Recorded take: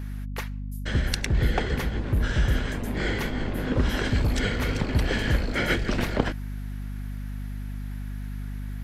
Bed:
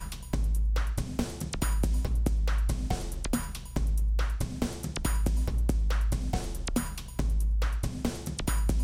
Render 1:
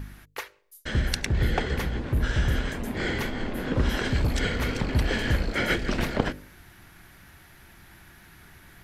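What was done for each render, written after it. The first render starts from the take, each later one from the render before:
hum removal 50 Hz, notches 12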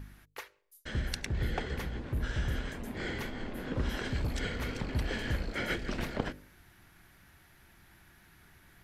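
level −8.5 dB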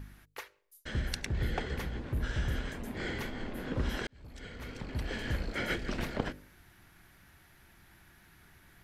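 0:04.07–0:05.47: fade in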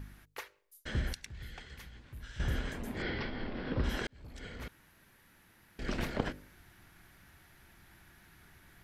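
0:01.13–0:02.40: guitar amp tone stack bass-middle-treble 5-5-5
0:03.02–0:03.84: bad sample-rate conversion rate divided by 4×, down none, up filtered
0:04.68–0:05.79: fill with room tone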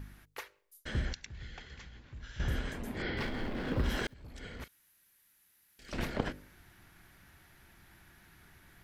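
0:01.05–0:02.48: linear-phase brick-wall low-pass 7,600 Hz
0:03.17–0:04.14: mu-law and A-law mismatch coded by mu
0:04.64–0:05.93: first-order pre-emphasis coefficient 0.9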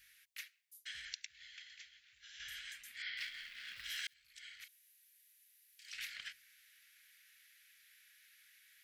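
inverse Chebyshev high-pass filter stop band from 970 Hz, stop band 40 dB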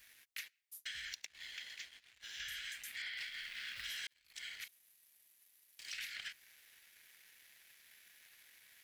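leveller curve on the samples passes 2
downward compressor 6 to 1, threshold −42 dBFS, peak gain reduction 9 dB

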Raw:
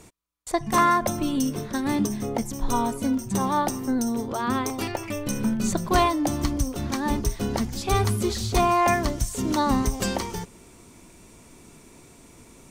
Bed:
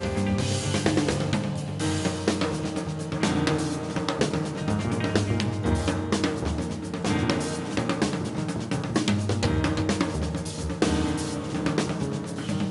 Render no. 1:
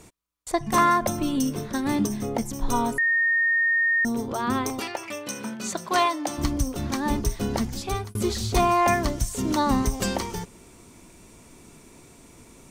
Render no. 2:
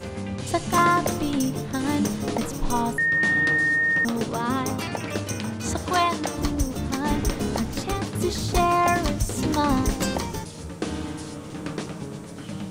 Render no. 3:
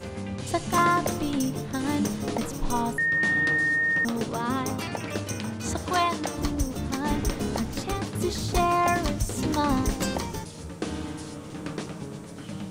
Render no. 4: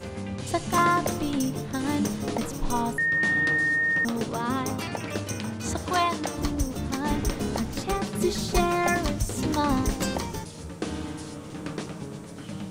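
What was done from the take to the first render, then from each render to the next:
0:02.98–0:04.05: beep over 1,840 Hz −18.5 dBFS; 0:04.80–0:06.38: meter weighting curve A; 0:07.73–0:08.15: fade out
mix in bed −6 dB
level −2.5 dB
0:07.88–0:08.95: comb filter 5.2 ms

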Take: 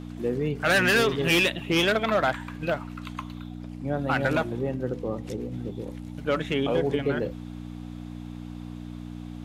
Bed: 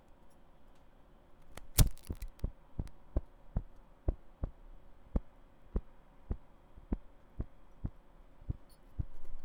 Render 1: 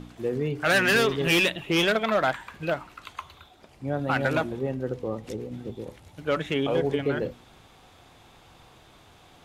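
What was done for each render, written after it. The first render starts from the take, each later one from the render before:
hum removal 60 Hz, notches 5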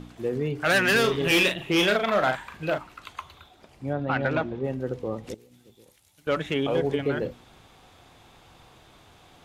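0:01.00–0:02.78: double-tracking delay 39 ms −6.5 dB
0:03.93–0:04.64: high-frequency loss of the air 170 metres
0:05.34–0:06.27: first-order pre-emphasis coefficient 0.9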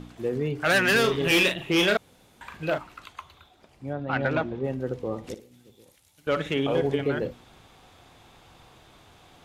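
0:01.97–0:02.41: fill with room tone
0:03.06–0:04.13: clip gain −3.5 dB
0:05.01–0:07.04: flutter between parallel walls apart 9.9 metres, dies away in 0.26 s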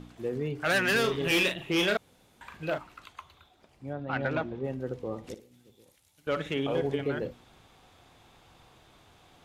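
level −4.5 dB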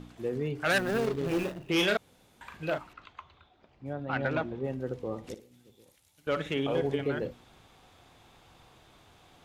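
0:00.78–0:01.69: running median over 41 samples
0:02.93–0:03.86: high-frequency loss of the air 170 metres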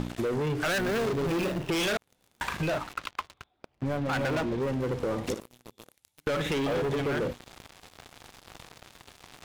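leveller curve on the samples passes 5
downward compressor, threshold −28 dBFS, peak gain reduction 10 dB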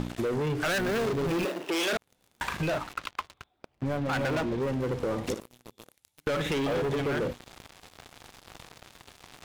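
0:01.45–0:01.93: high-pass filter 270 Hz 24 dB per octave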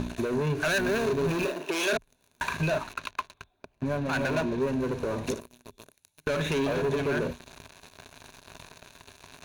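EQ curve with evenly spaced ripples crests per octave 1.5, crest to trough 8 dB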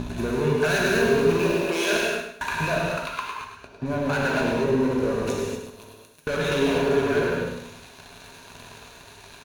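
repeating echo 104 ms, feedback 32%, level −7.5 dB
reverb whose tail is shaped and stops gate 270 ms flat, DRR −2.5 dB

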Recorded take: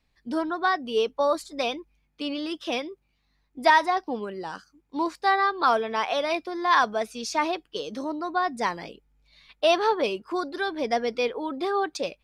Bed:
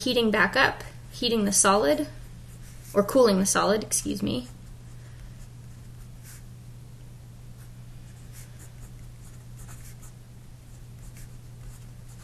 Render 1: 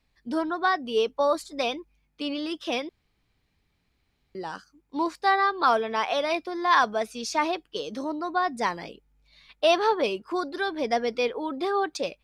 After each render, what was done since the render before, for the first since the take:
0:02.89–0:04.35: fill with room tone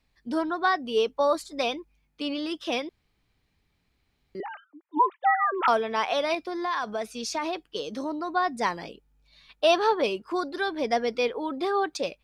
0:04.40–0:05.68: three sine waves on the formant tracks
0:06.34–0:08.28: downward compressor, threshold −25 dBFS
0:08.78–0:09.89: notch filter 2,100 Hz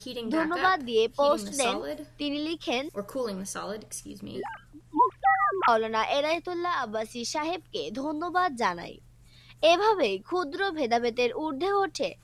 mix in bed −12.5 dB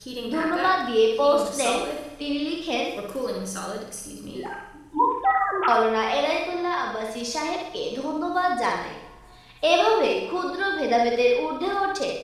repeating echo 63 ms, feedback 47%, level −4 dB
coupled-rooms reverb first 0.59 s, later 2.9 s, from −20 dB, DRR 4 dB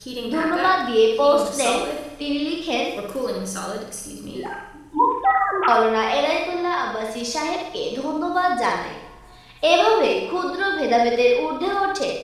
level +3 dB

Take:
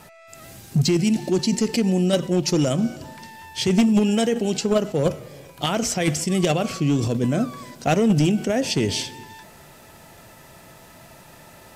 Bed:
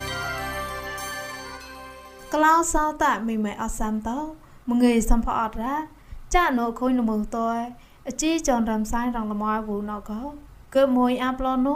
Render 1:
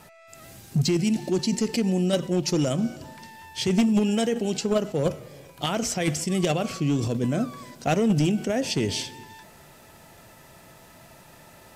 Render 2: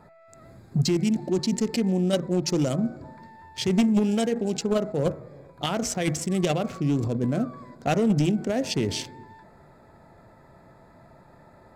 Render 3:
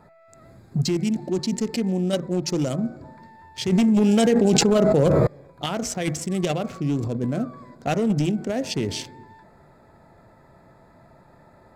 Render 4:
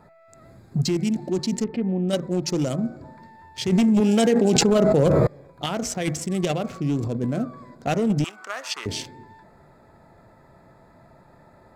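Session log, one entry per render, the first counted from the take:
level −3.5 dB
adaptive Wiener filter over 15 samples; hum removal 160.2 Hz, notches 14
0:03.72–0:05.27: envelope flattener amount 100%
0:01.64–0:02.09: high-frequency loss of the air 500 metres; 0:04.00–0:04.56: high-pass filter 160 Hz; 0:08.24–0:08.86: high-pass with resonance 1,200 Hz, resonance Q 6.8

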